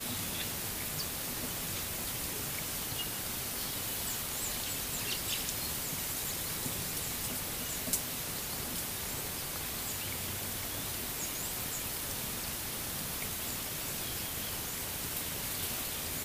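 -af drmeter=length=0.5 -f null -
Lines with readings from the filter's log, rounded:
Channel 1: DR: 13.3
Overall DR: 13.3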